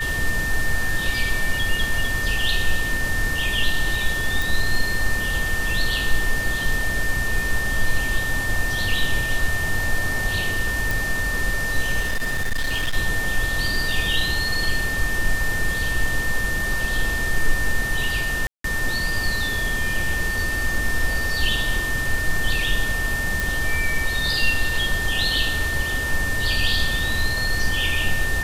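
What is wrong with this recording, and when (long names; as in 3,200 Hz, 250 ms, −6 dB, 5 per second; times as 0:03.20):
whistle 1,800 Hz −24 dBFS
0:04.42: click
0:10.91: click
0:12.00–0:12.97: clipping −18.5 dBFS
0:18.47–0:18.64: drop-out 173 ms
0:23.40: click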